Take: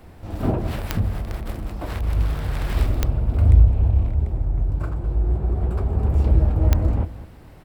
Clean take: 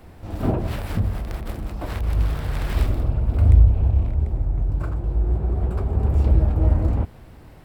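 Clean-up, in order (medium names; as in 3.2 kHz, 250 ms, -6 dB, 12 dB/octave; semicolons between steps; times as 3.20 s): de-click; inverse comb 210 ms -15.5 dB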